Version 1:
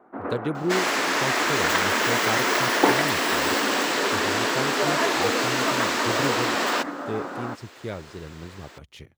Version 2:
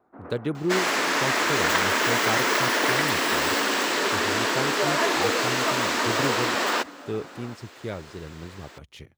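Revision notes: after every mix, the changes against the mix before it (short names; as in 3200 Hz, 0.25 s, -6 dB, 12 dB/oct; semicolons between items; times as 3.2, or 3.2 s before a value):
first sound -11.5 dB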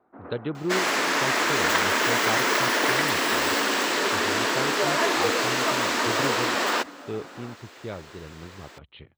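speech: add rippled Chebyshev low-pass 4100 Hz, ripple 3 dB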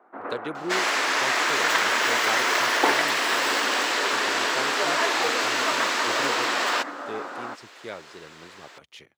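speech: remove rippled Chebyshev low-pass 4100 Hz, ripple 3 dB; first sound +11.0 dB; master: add weighting filter A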